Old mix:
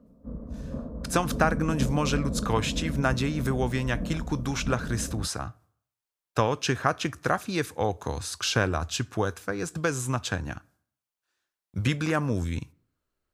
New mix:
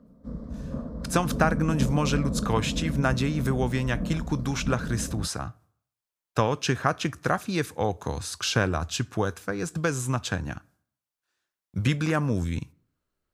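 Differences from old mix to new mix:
background: remove low-pass filter 1,100 Hz 12 dB per octave
master: add parametric band 170 Hz +3.5 dB 0.86 octaves

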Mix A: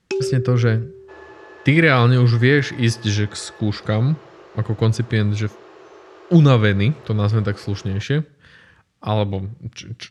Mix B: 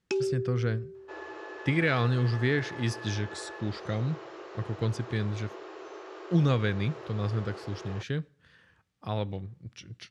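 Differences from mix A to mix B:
speech −12.0 dB
first sound −6.0 dB

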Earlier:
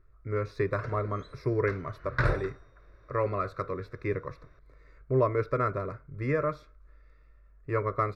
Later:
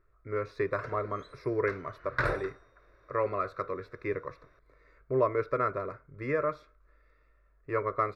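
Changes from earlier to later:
background: remove high-frequency loss of the air 51 metres
master: add bass and treble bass −9 dB, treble −5 dB

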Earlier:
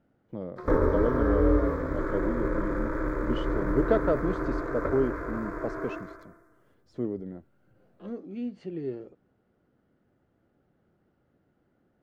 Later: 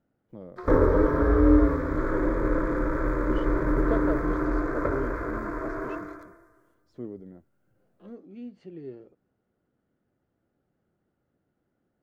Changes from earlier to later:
speech −6.5 dB
reverb: on, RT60 0.45 s

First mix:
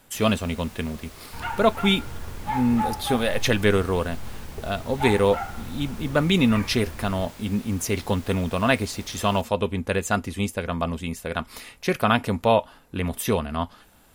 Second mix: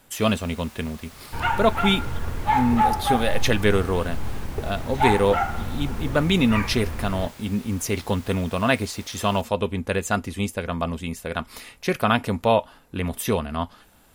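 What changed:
first sound: add high-pass filter 600 Hz 12 dB per octave
second sound +7.5 dB

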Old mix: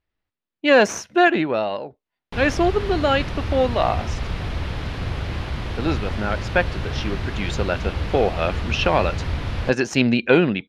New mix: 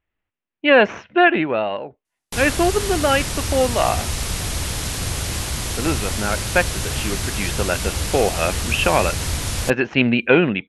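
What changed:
speech: add Butterworth low-pass 2,900 Hz 36 dB per octave
master: remove high-frequency loss of the air 340 metres

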